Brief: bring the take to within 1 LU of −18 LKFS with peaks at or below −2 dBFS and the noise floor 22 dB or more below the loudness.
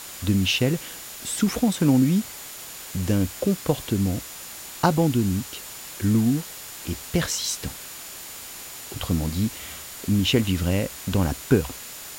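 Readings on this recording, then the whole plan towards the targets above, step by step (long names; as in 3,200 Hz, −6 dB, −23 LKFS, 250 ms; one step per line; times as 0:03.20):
interfering tone 7,000 Hz; level of the tone −46 dBFS; background noise floor −39 dBFS; target noise floor −46 dBFS; integrated loudness −24.0 LKFS; sample peak −4.5 dBFS; target loudness −18.0 LKFS
→ notch filter 7,000 Hz, Q 30
noise reduction from a noise print 7 dB
level +6 dB
brickwall limiter −2 dBFS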